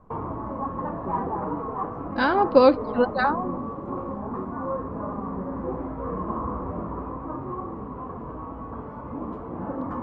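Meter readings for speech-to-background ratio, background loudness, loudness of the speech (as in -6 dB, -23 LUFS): 11.0 dB, -32.0 LUFS, -21.0 LUFS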